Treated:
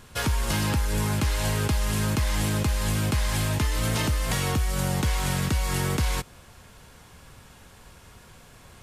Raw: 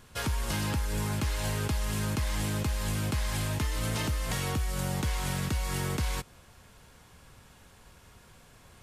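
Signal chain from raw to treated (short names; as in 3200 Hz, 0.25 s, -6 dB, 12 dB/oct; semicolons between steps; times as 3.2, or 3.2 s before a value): wow and flutter 16 cents; gain +5.5 dB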